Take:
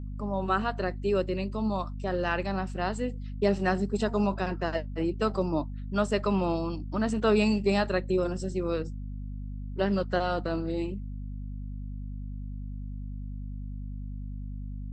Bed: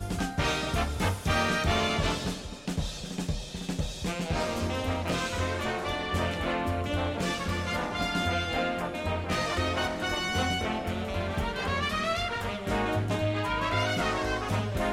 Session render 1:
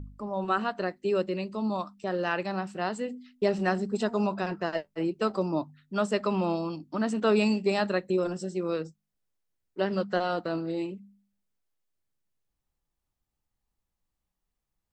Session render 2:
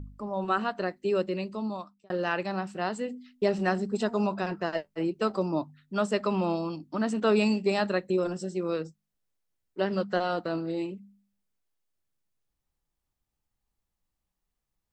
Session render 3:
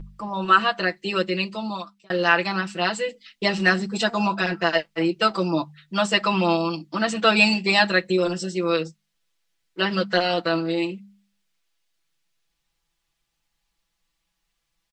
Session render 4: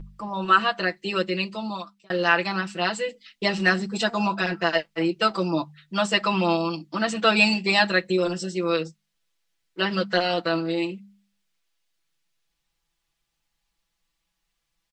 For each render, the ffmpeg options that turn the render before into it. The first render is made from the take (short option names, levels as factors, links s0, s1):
-af "bandreject=f=50:t=h:w=4,bandreject=f=100:t=h:w=4,bandreject=f=150:t=h:w=4,bandreject=f=200:t=h:w=4,bandreject=f=250:t=h:w=4"
-filter_complex "[0:a]asplit=2[s0][s1];[s0]atrim=end=2.1,asetpts=PTS-STARTPTS,afade=t=out:st=1.48:d=0.62[s2];[s1]atrim=start=2.1,asetpts=PTS-STARTPTS,afade=t=in:d=0.004:c=hsin[s3];[s2][s3]concat=n=2:v=0:a=1"
-af "equalizer=f=3200:t=o:w=2.9:g=13,aecho=1:1:6:0.96"
-af "volume=0.841"